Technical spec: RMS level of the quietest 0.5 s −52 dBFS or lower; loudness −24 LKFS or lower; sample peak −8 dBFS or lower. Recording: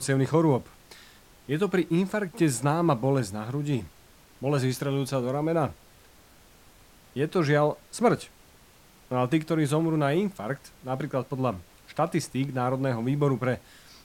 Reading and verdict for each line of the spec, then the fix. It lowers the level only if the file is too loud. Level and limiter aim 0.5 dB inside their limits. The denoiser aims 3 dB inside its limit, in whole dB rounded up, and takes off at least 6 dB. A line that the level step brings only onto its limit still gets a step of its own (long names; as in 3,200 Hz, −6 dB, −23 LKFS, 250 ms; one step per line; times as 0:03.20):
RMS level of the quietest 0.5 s −55 dBFS: in spec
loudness −27.0 LKFS: in spec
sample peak −9.5 dBFS: in spec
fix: no processing needed